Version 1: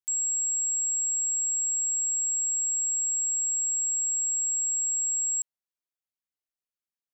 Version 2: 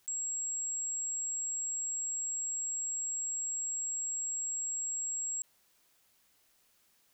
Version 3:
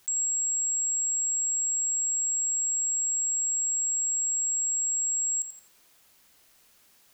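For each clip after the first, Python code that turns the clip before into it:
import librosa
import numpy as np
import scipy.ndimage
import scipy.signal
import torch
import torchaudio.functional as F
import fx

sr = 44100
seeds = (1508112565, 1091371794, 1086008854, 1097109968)

y1 = fx.env_flatten(x, sr, amount_pct=50)
y1 = y1 * 10.0 ** (-8.5 / 20.0)
y2 = fx.echo_feedback(y1, sr, ms=86, feedback_pct=25, wet_db=-9.0)
y2 = y2 * 10.0 ** (8.0 / 20.0)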